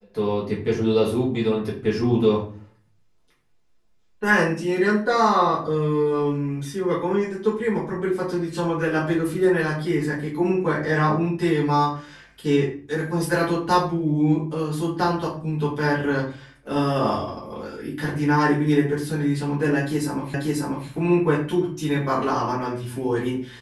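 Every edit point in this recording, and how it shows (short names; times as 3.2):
20.34 repeat of the last 0.54 s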